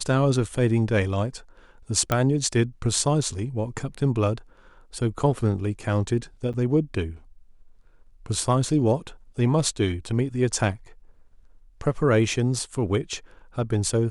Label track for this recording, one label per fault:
2.120000	2.120000	click −8 dBFS
6.530000	6.540000	drop-out 7.7 ms

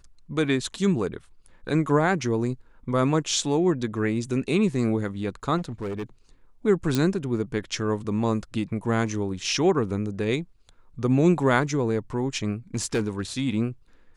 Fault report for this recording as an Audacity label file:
5.570000	6.030000	clipping −27 dBFS
6.950000	6.950000	click −10 dBFS
12.740000	13.210000	clipping −19.5 dBFS

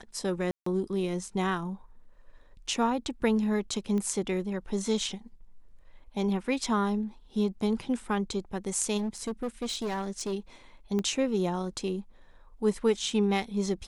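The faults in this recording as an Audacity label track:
0.510000	0.660000	drop-out 154 ms
3.980000	3.980000	click −22 dBFS
8.970000	10.340000	clipping −28 dBFS
10.990000	10.990000	click −19 dBFS

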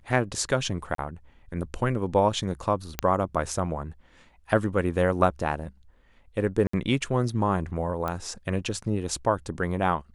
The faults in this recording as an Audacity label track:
0.950000	0.980000	drop-out 33 ms
2.990000	2.990000	click −8 dBFS
6.670000	6.730000	drop-out 64 ms
8.080000	8.080000	click −17 dBFS

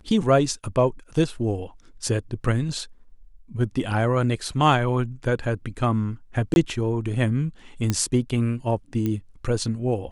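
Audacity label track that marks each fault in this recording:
6.540000	6.560000	drop-out 21 ms
7.900000	7.900000	click −9 dBFS
9.060000	9.060000	click −15 dBFS

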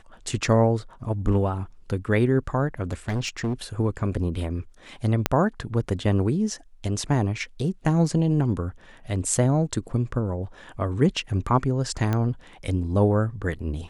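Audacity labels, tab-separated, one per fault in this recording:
2.910000	3.540000	clipping −22 dBFS
5.260000	5.260000	click −4 dBFS
12.130000	12.130000	click −13 dBFS

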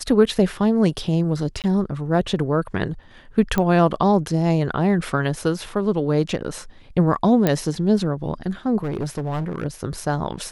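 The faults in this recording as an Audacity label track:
1.620000	1.640000	drop-out 18 ms
3.580000	3.580000	click −8 dBFS
7.470000	7.470000	click −5 dBFS
8.830000	9.650000	clipping −21.5 dBFS

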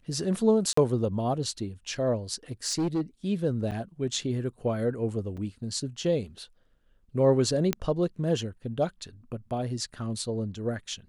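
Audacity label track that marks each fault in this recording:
0.730000	0.770000	drop-out 44 ms
2.660000	3.010000	clipping −23 dBFS
3.710000	3.720000	drop-out 7.7 ms
5.370000	5.380000	drop-out 5.3 ms
7.730000	7.730000	click −11 dBFS

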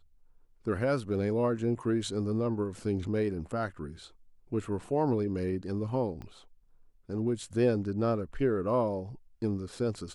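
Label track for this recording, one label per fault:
6.220000	6.220000	click −30 dBFS

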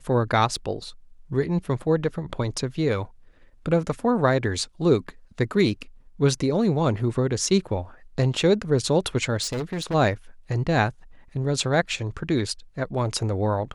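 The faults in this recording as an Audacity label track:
0.560000	0.560000	drop-out 3.9 ms
9.420000	9.950000	clipping −24.5 dBFS

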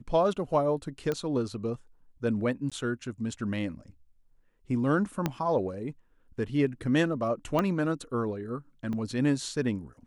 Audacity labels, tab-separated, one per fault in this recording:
1.120000	1.120000	click −18 dBFS
2.700000	2.720000	drop-out 16 ms
5.260000	5.260000	click −13 dBFS
7.590000	7.590000	click −14 dBFS
8.930000	8.930000	drop-out 3.1 ms

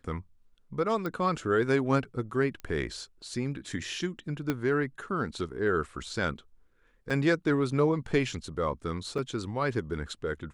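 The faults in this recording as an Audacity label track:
1.060000	1.060000	click −21 dBFS
2.600000	2.600000	click −27 dBFS
4.500000	4.500000	click −15 dBFS
7.100000	7.110000	drop-out 5.4 ms
9.180000	9.180000	drop-out 4.8 ms

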